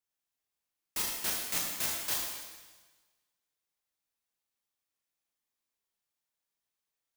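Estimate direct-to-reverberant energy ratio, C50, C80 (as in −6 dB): −3.0 dB, 1.0 dB, 3.0 dB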